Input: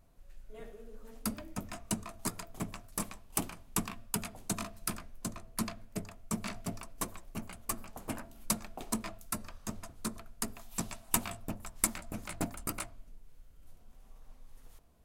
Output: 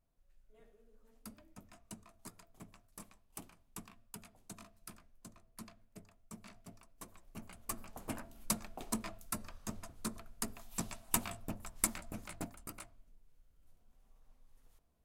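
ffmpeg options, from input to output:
ffmpeg -i in.wav -af "volume=-3dB,afade=type=in:start_time=6.99:duration=0.98:silence=0.223872,afade=type=out:start_time=12.01:duration=0.57:silence=0.398107" out.wav

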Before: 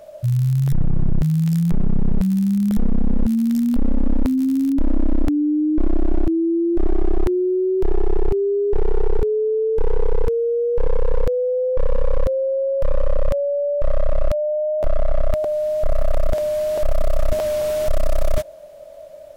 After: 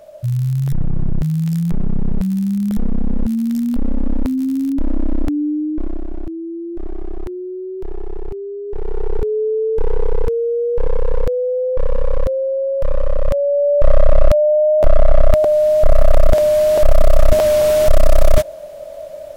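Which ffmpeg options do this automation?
ffmpeg -i in.wav -af "volume=16dB,afade=type=out:start_time=5.45:duration=0.62:silence=0.398107,afade=type=in:start_time=8.65:duration=0.76:silence=0.334965,afade=type=in:start_time=13.2:duration=0.67:silence=0.473151" out.wav

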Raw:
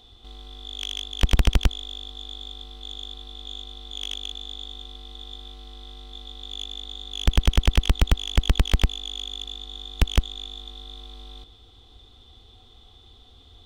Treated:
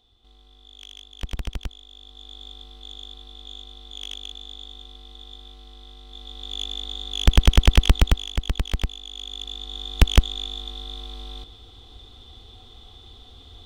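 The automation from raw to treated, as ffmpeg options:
ffmpeg -i in.wav -af "volume=14dB,afade=type=in:start_time=1.89:duration=0.59:silence=0.375837,afade=type=in:start_time=6.04:duration=0.63:silence=0.446684,afade=type=out:start_time=7.91:duration=0.45:silence=0.354813,afade=type=in:start_time=9.09:duration=0.88:silence=0.316228" out.wav

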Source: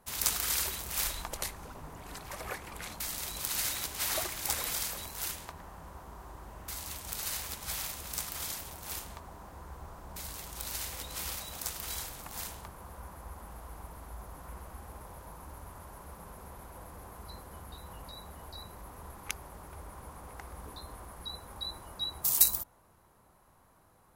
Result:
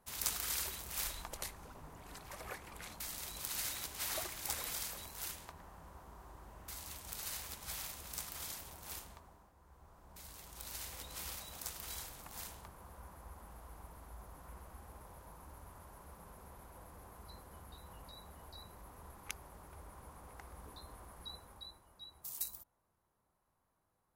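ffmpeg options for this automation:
ffmpeg -i in.wav -af "volume=5dB,afade=type=out:start_time=8.93:duration=0.61:silence=0.251189,afade=type=in:start_time=9.54:duration=1.43:silence=0.251189,afade=type=out:start_time=21.3:duration=0.52:silence=0.298538" out.wav

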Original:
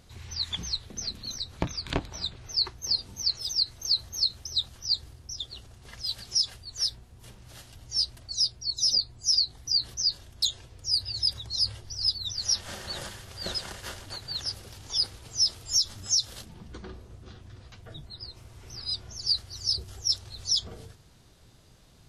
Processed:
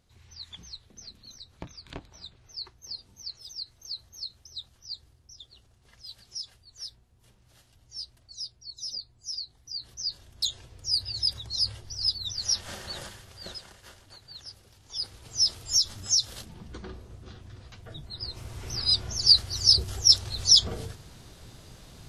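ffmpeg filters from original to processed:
ffmpeg -i in.wav -af "volume=19.5dB,afade=type=in:start_time=9.73:duration=0.94:silence=0.266073,afade=type=out:start_time=12.74:duration=0.96:silence=0.281838,afade=type=in:start_time=14.85:duration=0.63:silence=0.237137,afade=type=in:start_time=18.02:duration=0.48:silence=0.421697" out.wav

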